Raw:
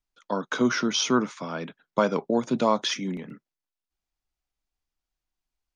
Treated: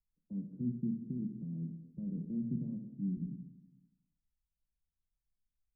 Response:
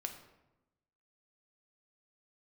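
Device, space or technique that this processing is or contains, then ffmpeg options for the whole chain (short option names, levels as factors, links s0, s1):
club heard from the street: -filter_complex "[0:a]alimiter=limit=0.126:level=0:latency=1:release=35,lowpass=f=200:w=0.5412,lowpass=f=200:w=1.3066[s0];[1:a]atrim=start_sample=2205[s1];[s0][s1]afir=irnorm=-1:irlink=0,volume=1.19"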